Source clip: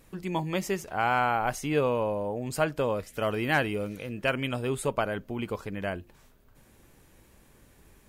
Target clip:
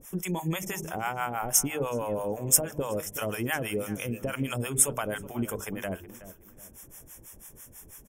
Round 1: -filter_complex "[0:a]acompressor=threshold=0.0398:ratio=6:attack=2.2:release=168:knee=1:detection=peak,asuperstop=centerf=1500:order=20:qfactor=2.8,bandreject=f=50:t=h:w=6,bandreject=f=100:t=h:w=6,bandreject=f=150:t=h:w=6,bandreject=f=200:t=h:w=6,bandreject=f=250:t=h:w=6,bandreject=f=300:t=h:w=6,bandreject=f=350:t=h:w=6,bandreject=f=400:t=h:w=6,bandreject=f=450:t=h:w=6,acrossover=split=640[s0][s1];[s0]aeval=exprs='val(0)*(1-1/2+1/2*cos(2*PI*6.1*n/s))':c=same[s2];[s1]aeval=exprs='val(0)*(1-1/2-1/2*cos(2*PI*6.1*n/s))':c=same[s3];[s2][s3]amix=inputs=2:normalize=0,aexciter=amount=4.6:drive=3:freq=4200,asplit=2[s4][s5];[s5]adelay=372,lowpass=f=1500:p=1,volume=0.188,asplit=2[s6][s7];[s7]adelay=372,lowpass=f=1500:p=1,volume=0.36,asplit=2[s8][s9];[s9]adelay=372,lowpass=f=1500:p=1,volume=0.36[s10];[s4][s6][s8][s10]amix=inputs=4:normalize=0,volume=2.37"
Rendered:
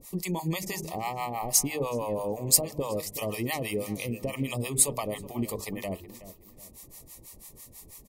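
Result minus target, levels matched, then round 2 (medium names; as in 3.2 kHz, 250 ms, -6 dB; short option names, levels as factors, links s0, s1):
2 kHz band -3.5 dB
-filter_complex "[0:a]acompressor=threshold=0.0398:ratio=6:attack=2.2:release=168:knee=1:detection=peak,asuperstop=centerf=4300:order=20:qfactor=2.8,bandreject=f=50:t=h:w=6,bandreject=f=100:t=h:w=6,bandreject=f=150:t=h:w=6,bandreject=f=200:t=h:w=6,bandreject=f=250:t=h:w=6,bandreject=f=300:t=h:w=6,bandreject=f=350:t=h:w=6,bandreject=f=400:t=h:w=6,bandreject=f=450:t=h:w=6,acrossover=split=640[s0][s1];[s0]aeval=exprs='val(0)*(1-1/2+1/2*cos(2*PI*6.1*n/s))':c=same[s2];[s1]aeval=exprs='val(0)*(1-1/2-1/2*cos(2*PI*6.1*n/s))':c=same[s3];[s2][s3]amix=inputs=2:normalize=0,aexciter=amount=4.6:drive=3:freq=4200,asplit=2[s4][s5];[s5]adelay=372,lowpass=f=1500:p=1,volume=0.188,asplit=2[s6][s7];[s7]adelay=372,lowpass=f=1500:p=1,volume=0.36,asplit=2[s8][s9];[s9]adelay=372,lowpass=f=1500:p=1,volume=0.36[s10];[s4][s6][s8][s10]amix=inputs=4:normalize=0,volume=2.37"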